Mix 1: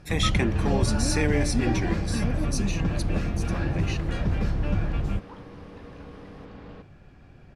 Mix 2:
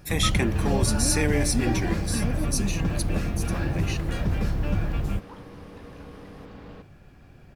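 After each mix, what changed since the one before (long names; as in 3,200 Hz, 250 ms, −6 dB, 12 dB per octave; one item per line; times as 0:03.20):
master: remove high-frequency loss of the air 59 metres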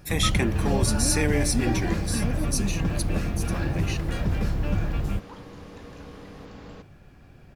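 second sound: remove high-frequency loss of the air 150 metres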